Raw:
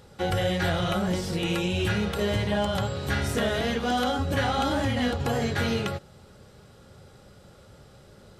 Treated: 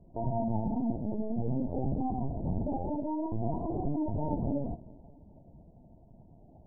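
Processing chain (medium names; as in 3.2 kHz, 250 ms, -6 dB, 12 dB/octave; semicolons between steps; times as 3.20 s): rippled Chebyshev low-pass 740 Hz, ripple 3 dB; bass shelf 240 Hz +9 dB; tape speed +26%; on a send at -16.5 dB: reverberation RT60 2.6 s, pre-delay 18 ms; on the sum: LPC vocoder at 8 kHz pitch kept; trim -8.5 dB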